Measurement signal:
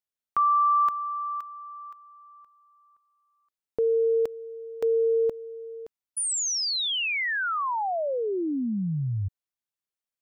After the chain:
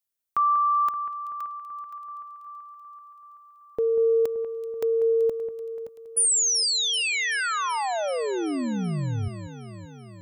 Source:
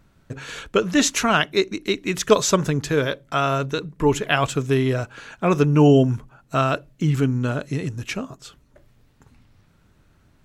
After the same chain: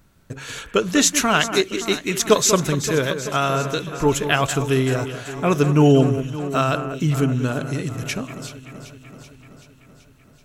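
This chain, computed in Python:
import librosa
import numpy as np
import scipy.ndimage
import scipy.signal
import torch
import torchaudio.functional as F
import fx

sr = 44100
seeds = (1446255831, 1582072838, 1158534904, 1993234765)

p1 = fx.high_shelf(x, sr, hz=6800.0, db=10.5)
y = p1 + fx.echo_alternate(p1, sr, ms=191, hz=2500.0, feedback_pct=80, wet_db=-10.5, dry=0)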